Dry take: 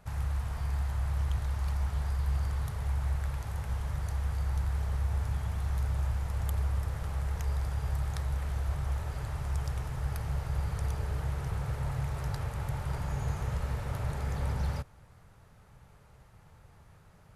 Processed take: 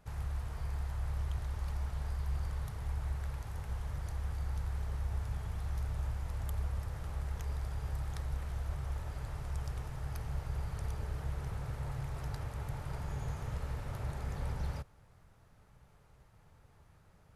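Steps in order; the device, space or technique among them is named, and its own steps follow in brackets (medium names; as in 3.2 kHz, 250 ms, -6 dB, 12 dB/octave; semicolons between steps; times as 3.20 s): octave pedal (harmony voices -12 st -7 dB); trim -6 dB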